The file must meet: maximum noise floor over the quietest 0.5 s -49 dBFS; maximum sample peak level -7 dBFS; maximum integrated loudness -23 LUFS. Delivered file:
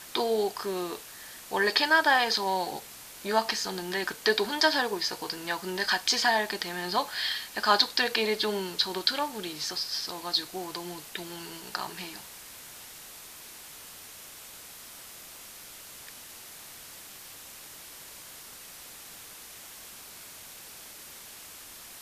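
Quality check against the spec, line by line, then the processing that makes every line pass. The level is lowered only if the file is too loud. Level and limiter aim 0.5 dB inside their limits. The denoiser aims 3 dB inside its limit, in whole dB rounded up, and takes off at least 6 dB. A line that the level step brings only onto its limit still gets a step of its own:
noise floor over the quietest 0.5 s -47 dBFS: fail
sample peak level -5.0 dBFS: fail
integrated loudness -28.0 LUFS: pass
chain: noise reduction 6 dB, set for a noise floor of -47 dBFS; peak limiter -7.5 dBFS

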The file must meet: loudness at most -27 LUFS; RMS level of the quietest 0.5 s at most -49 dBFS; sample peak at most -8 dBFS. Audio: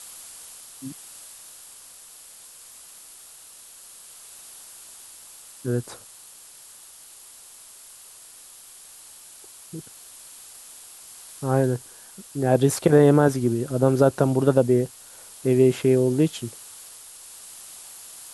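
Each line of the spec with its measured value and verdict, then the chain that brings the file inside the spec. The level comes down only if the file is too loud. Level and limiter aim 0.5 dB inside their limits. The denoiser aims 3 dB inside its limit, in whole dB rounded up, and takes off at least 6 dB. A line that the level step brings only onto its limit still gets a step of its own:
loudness -21.0 LUFS: fail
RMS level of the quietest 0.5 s -47 dBFS: fail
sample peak -5.0 dBFS: fail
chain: trim -6.5 dB

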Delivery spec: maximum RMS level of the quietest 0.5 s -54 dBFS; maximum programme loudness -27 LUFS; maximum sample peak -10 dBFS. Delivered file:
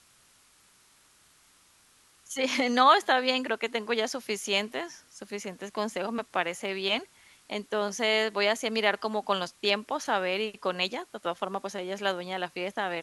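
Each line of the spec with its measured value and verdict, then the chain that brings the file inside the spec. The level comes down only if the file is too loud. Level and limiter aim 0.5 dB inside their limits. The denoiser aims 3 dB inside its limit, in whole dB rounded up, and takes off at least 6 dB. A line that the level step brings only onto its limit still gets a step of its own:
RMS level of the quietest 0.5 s -62 dBFS: pass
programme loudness -28.5 LUFS: pass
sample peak -7.0 dBFS: fail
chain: peak limiter -10.5 dBFS

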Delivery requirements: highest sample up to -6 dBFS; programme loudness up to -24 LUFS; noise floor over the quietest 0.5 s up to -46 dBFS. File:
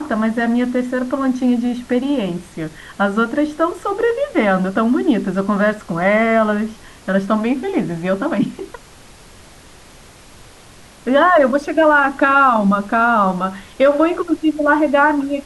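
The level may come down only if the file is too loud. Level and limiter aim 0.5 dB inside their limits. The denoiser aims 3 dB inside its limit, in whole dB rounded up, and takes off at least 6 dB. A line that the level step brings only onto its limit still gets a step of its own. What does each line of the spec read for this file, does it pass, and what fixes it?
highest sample -4.0 dBFS: fail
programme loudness -16.5 LUFS: fail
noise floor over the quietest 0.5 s -42 dBFS: fail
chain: trim -8 dB

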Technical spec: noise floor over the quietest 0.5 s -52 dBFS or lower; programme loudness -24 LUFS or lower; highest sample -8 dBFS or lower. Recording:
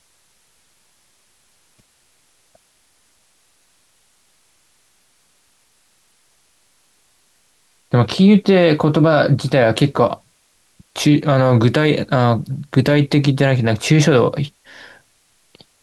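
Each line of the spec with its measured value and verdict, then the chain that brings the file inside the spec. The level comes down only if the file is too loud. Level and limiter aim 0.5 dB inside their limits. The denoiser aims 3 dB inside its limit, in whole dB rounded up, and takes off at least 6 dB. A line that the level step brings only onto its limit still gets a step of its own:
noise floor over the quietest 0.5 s -59 dBFS: pass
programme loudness -15.0 LUFS: fail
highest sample -2.5 dBFS: fail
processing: trim -9.5 dB

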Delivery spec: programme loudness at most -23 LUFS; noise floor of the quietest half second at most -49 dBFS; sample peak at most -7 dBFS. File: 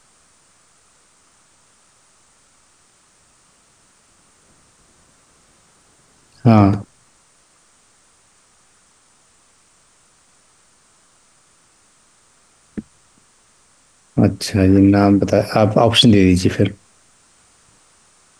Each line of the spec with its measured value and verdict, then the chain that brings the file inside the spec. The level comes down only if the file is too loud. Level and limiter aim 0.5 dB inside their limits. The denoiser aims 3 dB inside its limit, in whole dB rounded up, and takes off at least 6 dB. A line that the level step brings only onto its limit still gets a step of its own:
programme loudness -14.0 LUFS: fail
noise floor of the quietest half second -55 dBFS: pass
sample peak -2.0 dBFS: fail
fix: trim -9.5 dB

